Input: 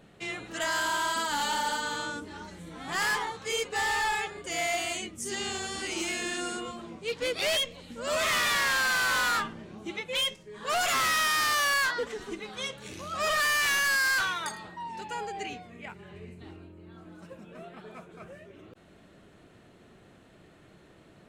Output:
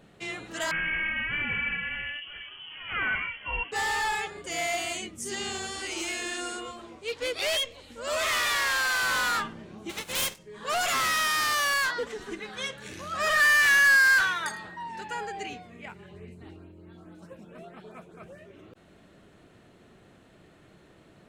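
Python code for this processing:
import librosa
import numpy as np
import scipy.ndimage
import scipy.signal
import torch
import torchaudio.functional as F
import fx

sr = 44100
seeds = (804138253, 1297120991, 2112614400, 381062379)

y = fx.freq_invert(x, sr, carrier_hz=3200, at=(0.71, 3.72))
y = fx.peak_eq(y, sr, hz=180.0, db=-13.5, octaves=0.77, at=(5.71, 9.03))
y = fx.spec_flatten(y, sr, power=0.41, at=(9.89, 10.37), fade=0.02)
y = fx.peak_eq(y, sr, hz=1700.0, db=8.5, octaves=0.41, at=(12.26, 15.35))
y = fx.filter_lfo_notch(y, sr, shape='saw_up', hz=4.6, low_hz=920.0, high_hz=7400.0, q=1.3, at=(16.06, 18.38))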